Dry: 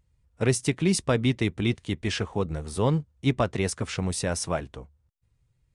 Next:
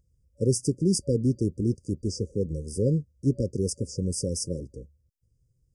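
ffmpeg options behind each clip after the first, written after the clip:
-af "afftfilt=real='re*(1-between(b*sr/4096,570,4700))':imag='im*(1-between(b*sr/4096,570,4700))':win_size=4096:overlap=0.75"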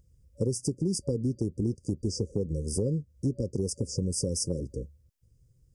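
-af "acompressor=threshold=0.0251:ratio=6,volume=2"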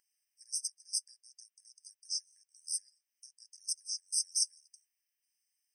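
-af "afftfilt=real='re*eq(mod(floor(b*sr/1024/1600),2),1)':imag='im*eq(mod(floor(b*sr/1024/1600),2),1)':win_size=1024:overlap=0.75,volume=1.41"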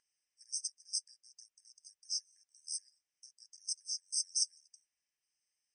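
-af "lowpass=f=7500:t=q:w=2.8,aeval=exprs='0.282*(cos(1*acos(clip(val(0)/0.282,-1,1)))-cos(1*PI/2))+0.00316*(cos(5*acos(clip(val(0)/0.282,-1,1)))-cos(5*PI/2))+0.002*(cos(7*acos(clip(val(0)/0.282,-1,1)))-cos(7*PI/2))':c=same,aemphasis=mode=reproduction:type=50fm"

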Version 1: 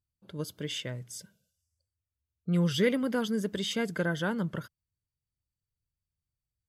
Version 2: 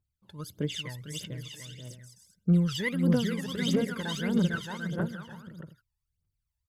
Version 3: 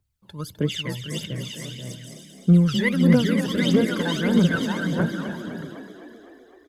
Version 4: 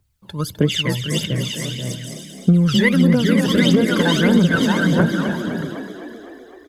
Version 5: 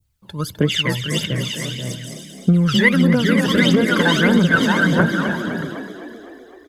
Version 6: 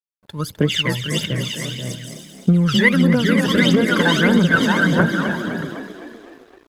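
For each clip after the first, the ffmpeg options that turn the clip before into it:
-af "aecho=1:1:450|742.5|932.6|1056|1137:0.631|0.398|0.251|0.158|0.1,aphaser=in_gain=1:out_gain=1:delay=1.2:decay=0.78:speed=1.6:type=triangular,volume=0.531"
-filter_complex "[0:a]acrossover=split=190|3800[s0][s1][s2];[s2]alimiter=level_in=5.31:limit=0.0631:level=0:latency=1:release=136,volume=0.188[s3];[s0][s1][s3]amix=inputs=3:normalize=0,asplit=9[s4][s5][s6][s7][s8][s9][s10][s11][s12];[s5]adelay=255,afreqshift=33,volume=0.316[s13];[s6]adelay=510,afreqshift=66,volume=0.195[s14];[s7]adelay=765,afreqshift=99,volume=0.122[s15];[s8]adelay=1020,afreqshift=132,volume=0.075[s16];[s9]adelay=1275,afreqshift=165,volume=0.0468[s17];[s10]adelay=1530,afreqshift=198,volume=0.0288[s18];[s11]adelay=1785,afreqshift=231,volume=0.018[s19];[s12]adelay=2040,afreqshift=264,volume=0.0111[s20];[s4][s13][s14][s15][s16][s17][s18][s19][s20]amix=inputs=9:normalize=0,volume=2.37"
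-af "acompressor=threshold=0.112:ratio=12,volume=2.82"
-af "adynamicequalizer=threshold=0.0224:dfrequency=1500:dqfactor=0.79:tfrequency=1500:tqfactor=0.79:attack=5:release=100:ratio=0.375:range=3:mode=boostabove:tftype=bell,volume=0.891"
-af "aeval=exprs='sgn(val(0))*max(abs(val(0))-0.00473,0)':c=same"

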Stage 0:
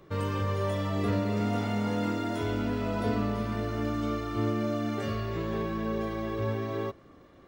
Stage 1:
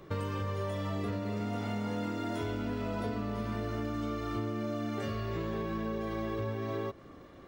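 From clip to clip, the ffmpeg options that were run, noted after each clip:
-af "acompressor=threshold=0.02:ratio=10,volume=1.41"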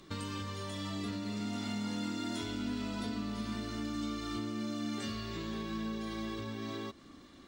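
-af "equalizer=f=125:t=o:w=1:g=-6,equalizer=f=250:t=o:w=1:g=8,equalizer=f=500:t=o:w=1:g=-9,equalizer=f=4000:t=o:w=1:g=10,equalizer=f=8000:t=o:w=1:g=11,volume=0.631"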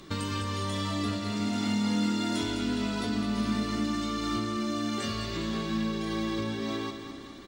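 -af "aecho=1:1:206|412|618|824|1030|1236|1442:0.376|0.21|0.118|0.066|0.037|0.0207|0.0116,volume=2.24"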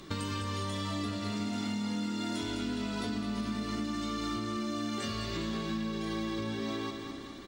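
-af "acompressor=threshold=0.0282:ratio=6"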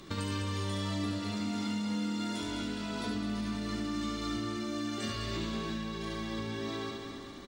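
-af "aecho=1:1:71:0.562,volume=0.841"

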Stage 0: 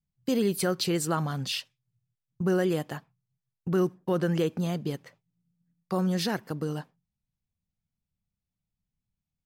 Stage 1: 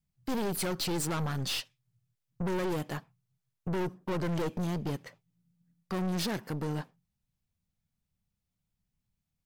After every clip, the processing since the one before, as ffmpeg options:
-af "aeval=exprs='(tanh(50.1*val(0)+0.45)-tanh(0.45))/50.1':c=same,volume=1.68"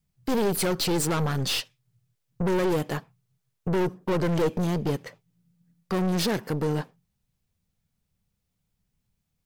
-af "equalizer=f=450:t=o:w=0.48:g=5,volume=2"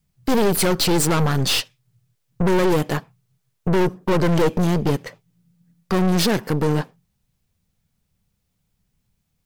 -af "aeval=exprs='(tanh(11.2*val(0)+0.55)-tanh(0.55))/11.2':c=same,volume=2.66"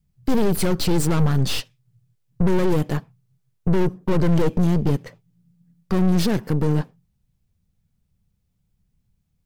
-af "lowshelf=f=290:g=11,volume=0.447"

